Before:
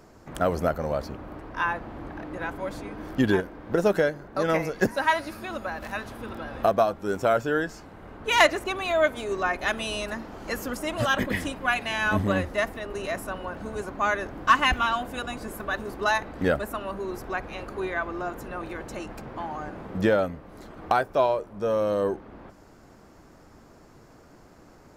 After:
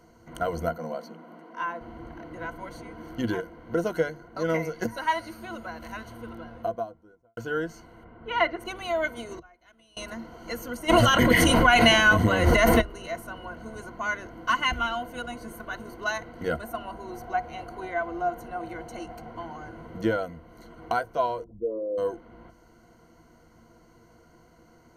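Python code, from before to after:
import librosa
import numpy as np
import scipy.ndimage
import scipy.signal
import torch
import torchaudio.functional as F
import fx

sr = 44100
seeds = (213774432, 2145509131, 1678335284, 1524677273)

y = fx.cheby_ripple_highpass(x, sr, hz=160.0, ripple_db=3, at=(0.69, 1.81))
y = fx.studio_fade_out(y, sr, start_s=6.05, length_s=1.32)
y = fx.air_absorb(y, sr, metres=380.0, at=(8.03, 8.59), fade=0.02)
y = fx.gate_flip(y, sr, shuts_db=-25.0, range_db=-26, at=(9.38, 9.97))
y = fx.env_flatten(y, sr, amount_pct=100, at=(10.88, 12.8), fade=0.02)
y = fx.peak_eq(y, sr, hz=740.0, db=11.5, octaves=0.22, at=(16.64, 19.34))
y = fx.envelope_sharpen(y, sr, power=3.0, at=(21.44, 21.98))
y = fx.ripple_eq(y, sr, per_octave=1.9, db=14)
y = y * 10.0 ** (-6.5 / 20.0)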